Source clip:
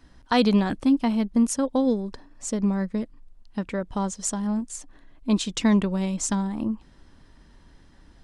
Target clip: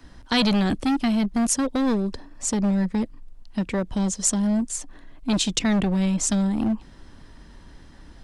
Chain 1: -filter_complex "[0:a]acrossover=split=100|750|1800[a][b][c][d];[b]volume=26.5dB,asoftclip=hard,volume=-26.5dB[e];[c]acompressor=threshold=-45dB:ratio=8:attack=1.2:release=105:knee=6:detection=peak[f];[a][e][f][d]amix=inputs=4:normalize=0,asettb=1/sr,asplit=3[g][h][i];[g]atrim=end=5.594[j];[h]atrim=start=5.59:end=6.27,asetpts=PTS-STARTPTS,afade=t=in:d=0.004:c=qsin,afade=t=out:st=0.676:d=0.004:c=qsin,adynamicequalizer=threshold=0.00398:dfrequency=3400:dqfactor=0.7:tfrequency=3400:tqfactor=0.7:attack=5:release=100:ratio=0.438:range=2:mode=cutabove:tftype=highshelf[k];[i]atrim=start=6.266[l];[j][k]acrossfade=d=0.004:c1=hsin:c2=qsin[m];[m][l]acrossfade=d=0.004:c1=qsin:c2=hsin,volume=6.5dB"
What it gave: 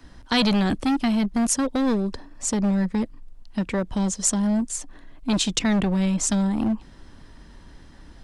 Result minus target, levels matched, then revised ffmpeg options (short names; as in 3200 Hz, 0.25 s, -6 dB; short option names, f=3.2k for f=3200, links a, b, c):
compressor: peak gain reduction -8.5 dB
-filter_complex "[0:a]acrossover=split=100|750|1800[a][b][c][d];[b]volume=26.5dB,asoftclip=hard,volume=-26.5dB[e];[c]acompressor=threshold=-54.5dB:ratio=8:attack=1.2:release=105:knee=6:detection=peak[f];[a][e][f][d]amix=inputs=4:normalize=0,asettb=1/sr,asplit=3[g][h][i];[g]atrim=end=5.594[j];[h]atrim=start=5.59:end=6.27,asetpts=PTS-STARTPTS,afade=t=in:d=0.004:c=qsin,afade=t=out:st=0.676:d=0.004:c=qsin,adynamicequalizer=threshold=0.00398:dfrequency=3400:dqfactor=0.7:tfrequency=3400:tqfactor=0.7:attack=5:release=100:ratio=0.438:range=2:mode=cutabove:tftype=highshelf[k];[i]atrim=start=6.266[l];[j][k]acrossfade=d=0.004:c1=hsin:c2=qsin[m];[m][l]acrossfade=d=0.004:c1=qsin:c2=hsin,volume=6.5dB"